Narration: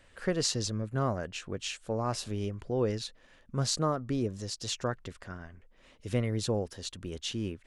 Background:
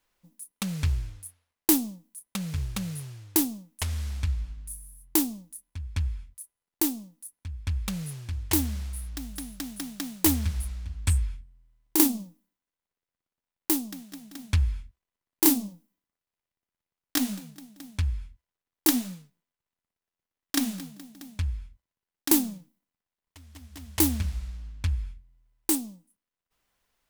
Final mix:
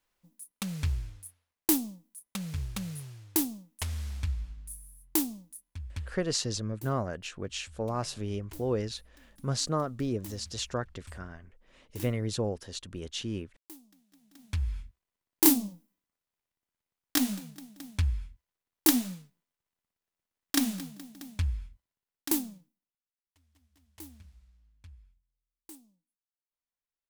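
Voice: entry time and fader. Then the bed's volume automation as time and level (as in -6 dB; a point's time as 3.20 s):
5.90 s, -0.5 dB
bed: 5.91 s -4 dB
6.24 s -24 dB
14.04 s -24 dB
14.82 s -0.5 dB
21.75 s -0.5 dB
23.86 s -24.5 dB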